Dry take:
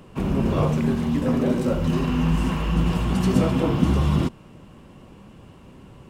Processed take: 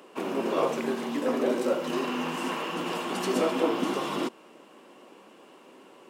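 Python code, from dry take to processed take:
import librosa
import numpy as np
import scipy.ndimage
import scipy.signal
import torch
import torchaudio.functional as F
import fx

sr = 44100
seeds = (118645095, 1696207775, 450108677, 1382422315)

y = scipy.signal.sosfilt(scipy.signal.butter(4, 310.0, 'highpass', fs=sr, output='sos'), x)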